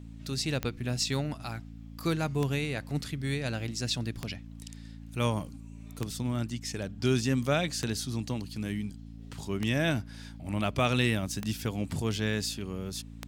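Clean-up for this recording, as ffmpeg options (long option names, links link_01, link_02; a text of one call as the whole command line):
ffmpeg -i in.wav -af "adeclick=threshold=4,bandreject=frequency=55.8:width_type=h:width=4,bandreject=frequency=111.6:width_type=h:width=4,bandreject=frequency=167.4:width_type=h:width=4,bandreject=frequency=223.2:width_type=h:width=4,bandreject=frequency=279:width_type=h:width=4" out.wav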